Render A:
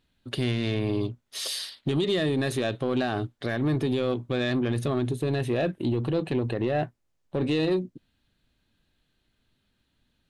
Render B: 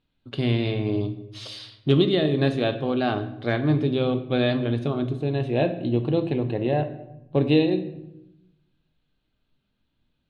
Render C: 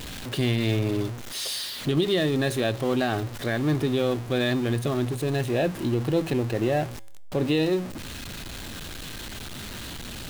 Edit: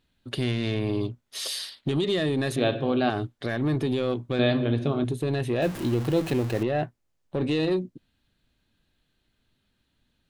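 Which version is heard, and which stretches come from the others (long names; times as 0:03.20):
A
0:02.56–0:03.10: punch in from B
0:04.39–0:05.04: punch in from B
0:05.62–0:06.63: punch in from C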